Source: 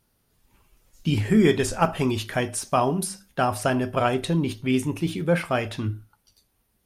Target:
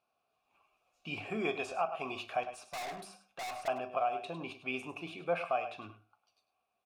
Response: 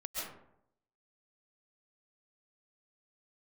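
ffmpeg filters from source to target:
-filter_complex "[0:a]asplit=3[a][b][c];[a]bandpass=f=730:t=q:w=8,volume=0dB[d];[b]bandpass=f=1.09k:t=q:w=8,volume=-6dB[e];[c]bandpass=f=2.44k:t=q:w=8,volume=-9dB[f];[d][e][f]amix=inputs=3:normalize=0,lowshelf=f=320:g=6,asettb=1/sr,asplit=3[g][h][i];[g]atrim=end=2.434[j];[h]atrim=start=2.43:end=3.68,asetpts=PTS-STARTPTS,afade=t=in:d=0.004:c=qsin,afade=t=out:st=1.246:d=0.004:c=qsin,aeval=exprs='(tanh(141*val(0)+0.15)-tanh(0.15))/141':c=same[k];[i]atrim=start=3.676[l];[j][k]acrossfade=d=0.004:c1=hsin:c2=qsin[m];[m][l]acrossfade=d=0.004:c1=qsin:c2=hsin,tiltshelf=f=680:g=-5,bandreject=f=3.1k:w=18,asplit=2[n][o];[o]aecho=0:1:41|102:0.112|0.224[p];[n][p]amix=inputs=2:normalize=0,alimiter=level_in=0.5dB:limit=-24dB:level=0:latency=1:release=346,volume=-0.5dB,volume=3dB"

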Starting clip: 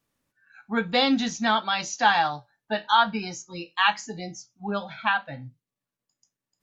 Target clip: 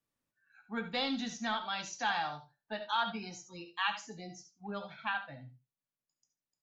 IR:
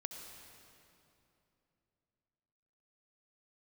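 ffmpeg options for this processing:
-filter_complex "[0:a]acrossover=split=220|1100[a][b][c];[b]asoftclip=type=tanh:threshold=-21.5dB[d];[a][d][c]amix=inputs=3:normalize=0,aecho=1:1:72:0.178[e];[1:a]atrim=start_sample=2205,atrim=end_sample=3969[f];[e][f]afir=irnorm=-1:irlink=0,volume=-7.5dB"

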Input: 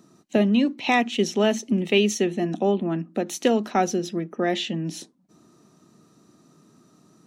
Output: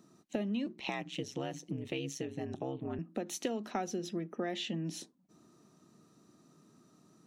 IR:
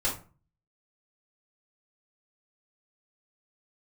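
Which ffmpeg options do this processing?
-filter_complex "[0:a]acompressor=threshold=-25dB:ratio=6,asettb=1/sr,asplit=3[a][b][c];[a]atrim=end=0.664[d];[b]atrim=start=0.66:end=2.99,asetpts=PTS-STARTPTS,afade=t=in:d=0.004:c=qsin,afade=t=out:st=2.326:d=0.004:c=qsin,aeval=exprs='val(0)*sin(2*PI*66*n/s)':c=same[e];[c]atrim=start=2.986[f];[d][e]acrossfade=d=0.004:c1=hsin:c2=qsin[g];[g][f]acrossfade=d=0.004:c1=qsin:c2=hsin,volume=-7dB"

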